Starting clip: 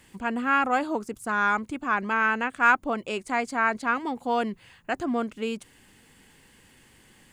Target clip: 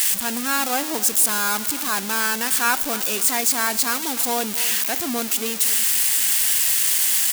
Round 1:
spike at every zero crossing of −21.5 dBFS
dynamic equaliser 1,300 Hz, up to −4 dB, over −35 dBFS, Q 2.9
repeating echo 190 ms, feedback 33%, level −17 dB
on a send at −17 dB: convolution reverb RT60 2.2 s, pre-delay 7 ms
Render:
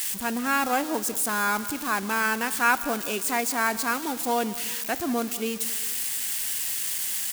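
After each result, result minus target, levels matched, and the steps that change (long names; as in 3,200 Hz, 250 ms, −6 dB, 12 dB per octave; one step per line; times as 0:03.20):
spike at every zero crossing: distortion −10 dB; echo 86 ms early
change: spike at every zero crossing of −11.5 dBFS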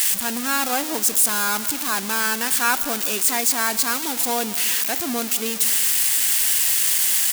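echo 86 ms early
change: repeating echo 276 ms, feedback 33%, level −17 dB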